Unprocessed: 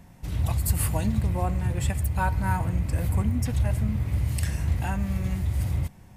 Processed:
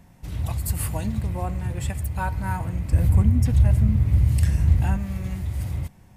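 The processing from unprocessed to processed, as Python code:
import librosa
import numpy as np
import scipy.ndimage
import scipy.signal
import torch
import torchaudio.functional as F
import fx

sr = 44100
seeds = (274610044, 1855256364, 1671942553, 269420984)

y = fx.low_shelf(x, sr, hz=260.0, db=10.0, at=(2.92, 4.97))
y = y * 10.0 ** (-1.5 / 20.0)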